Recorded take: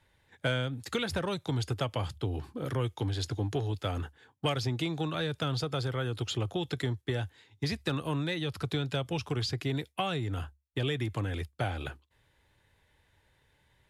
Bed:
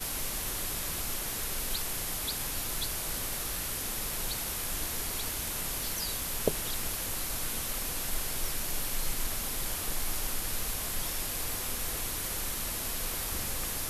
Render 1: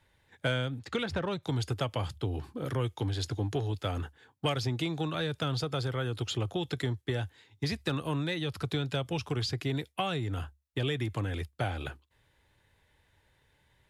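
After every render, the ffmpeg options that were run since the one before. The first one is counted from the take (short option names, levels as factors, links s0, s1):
-filter_complex "[0:a]asettb=1/sr,asplit=3[s0][s1][s2];[s0]atrim=end=0.794[s3];[s1]atrim=start=0.79:end=1.43,asetpts=PTS-STARTPTS,afade=t=in:d=0.004:c=qsin,afade=t=out:st=0.636:d=0.004:c=qsin,adynamicsmooth=sensitivity=2.5:basefreq=4400[s4];[s2]atrim=start=1.426[s5];[s3][s4]acrossfade=d=0.004:c1=hsin:c2=qsin[s6];[s6][s5]acrossfade=d=0.004:c1=qsin:c2=hsin"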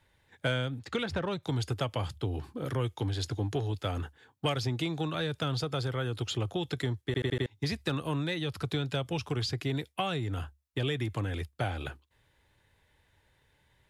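-filter_complex "[0:a]asplit=6[s0][s1][s2][s3][s4][s5];[s0]atrim=end=7.142[s6];[s1]atrim=start=7.058:end=7.142[s7];[s2]atrim=start=7.058:end=7.142[s8];[s3]atrim=start=7.058:end=7.142[s9];[s4]atrim=start=7.058:end=7.142[s10];[s5]atrim=start=7.458[s11];[s6][s7]acrossfade=d=0.004:c1=hsin:c2=hsin[s12];[s12][s8]acrossfade=d=0.004:c1=hsin:c2=hsin[s13];[s13][s9]acrossfade=d=0.004:c1=hsin:c2=hsin[s14];[s14][s10]acrossfade=d=0.004:c1=hsin:c2=hsin[s15];[s15][s11]acrossfade=d=0.004:c1=hsin:c2=hsin"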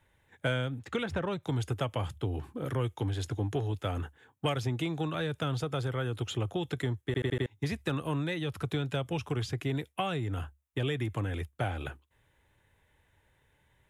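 -af "equalizer=f=4600:t=o:w=0.56:g=-11"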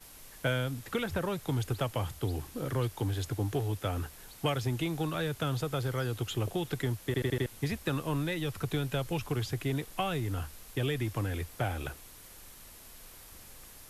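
-filter_complex "[1:a]volume=0.141[s0];[0:a][s0]amix=inputs=2:normalize=0"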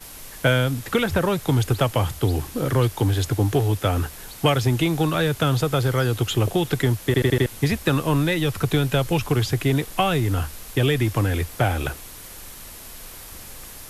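-af "volume=3.76"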